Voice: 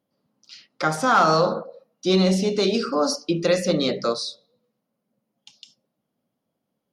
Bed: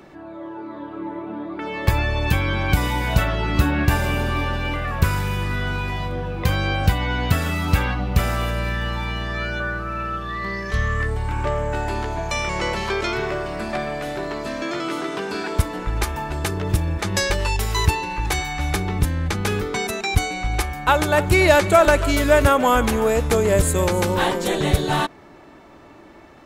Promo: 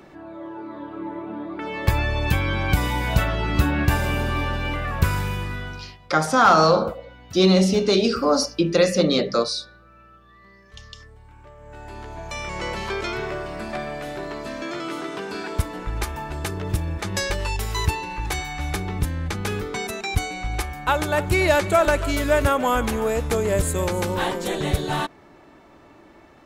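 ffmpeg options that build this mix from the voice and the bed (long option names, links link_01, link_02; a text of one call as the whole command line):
ffmpeg -i stem1.wav -i stem2.wav -filter_complex "[0:a]adelay=5300,volume=2.5dB[link_01];[1:a]volume=18dB,afade=type=out:start_time=5.21:duration=0.77:silence=0.0794328,afade=type=in:start_time=11.57:duration=1.25:silence=0.105925[link_02];[link_01][link_02]amix=inputs=2:normalize=0" out.wav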